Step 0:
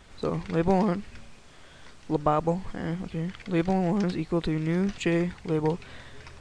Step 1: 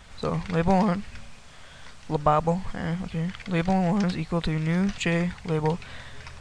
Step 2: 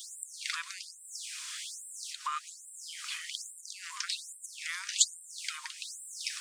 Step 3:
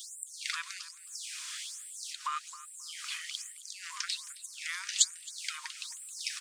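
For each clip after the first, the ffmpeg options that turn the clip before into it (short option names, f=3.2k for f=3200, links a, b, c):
-af "equalizer=f=340:w=1.9:g=-11,volume=4.5dB"
-af "acompressor=threshold=-29dB:ratio=6,crystalizer=i=9:c=0,afftfilt=real='re*gte(b*sr/1024,910*pow(7500/910,0.5+0.5*sin(2*PI*1.2*pts/sr)))':imag='im*gte(b*sr/1024,910*pow(7500/910,0.5+0.5*sin(2*PI*1.2*pts/sr)))':win_size=1024:overlap=0.75,volume=-2.5dB"
-filter_complex "[0:a]asplit=2[a][b];[b]adelay=267,lowpass=f=3.2k:p=1,volume=-15.5dB,asplit=2[c][d];[d]adelay=267,lowpass=f=3.2k:p=1,volume=0.17[e];[a][c][e]amix=inputs=3:normalize=0"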